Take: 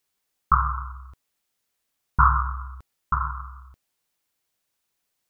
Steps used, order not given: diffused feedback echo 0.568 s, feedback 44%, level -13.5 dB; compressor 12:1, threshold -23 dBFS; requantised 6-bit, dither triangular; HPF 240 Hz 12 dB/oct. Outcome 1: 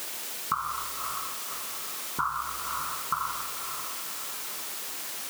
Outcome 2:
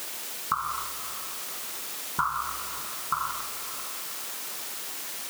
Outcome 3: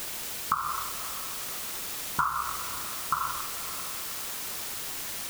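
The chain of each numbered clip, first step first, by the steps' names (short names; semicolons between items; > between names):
diffused feedback echo > requantised > compressor > HPF; requantised > HPF > compressor > diffused feedback echo; HPF > requantised > compressor > diffused feedback echo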